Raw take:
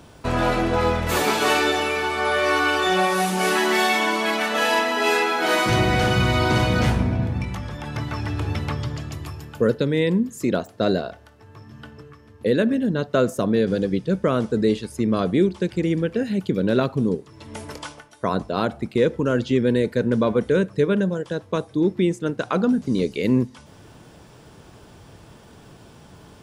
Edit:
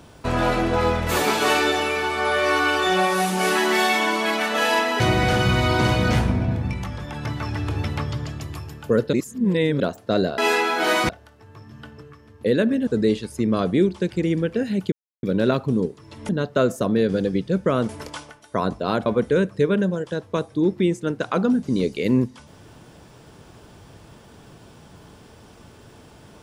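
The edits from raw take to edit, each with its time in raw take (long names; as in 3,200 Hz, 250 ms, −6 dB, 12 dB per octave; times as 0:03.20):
0:05.00–0:05.71: move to 0:11.09
0:09.84–0:10.51: reverse
0:12.87–0:14.47: move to 0:17.58
0:16.52: splice in silence 0.31 s
0:18.75–0:20.25: remove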